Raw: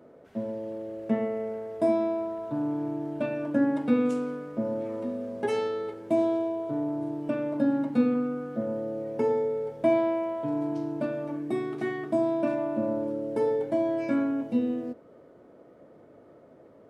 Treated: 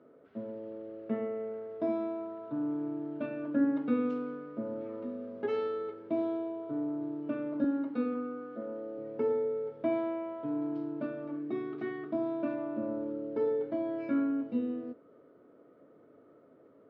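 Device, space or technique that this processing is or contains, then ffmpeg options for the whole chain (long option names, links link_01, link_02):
guitar cabinet: -filter_complex "[0:a]highpass=90,equalizer=frequency=280:width_type=q:width=4:gain=6,equalizer=frequency=430:width_type=q:width=4:gain=5,equalizer=frequency=830:width_type=q:width=4:gain=-3,equalizer=frequency=1300:width_type=q:width=4:gain=8,lowpass=frequency=4100:width=0.5412,lowpass=frequency=4100:width=1.3066,asettb=1/sr,asplit=3[link_01][link_02][link_03];[link_01]atrim=end=7.644[link_04];[link_02]atrim=start=7.64:end=8.98,asetpts=PTS-STARTPTS,afade=type=in:duration=0.004:curve=qsin,afade=type=out:start_time=1.336:duration=0.004:curve=qsin,highpass=260[link_05];[link_03]atrim=start=8.976[link_06];[link_04][link_05]acrossfade=duration=0.004:curve1=hsin:curve2=qsin[link_07];[link_07][link_06]acrossfade=duration=0.004:curve1=qsin:curve2=hsin,volume=-9dB"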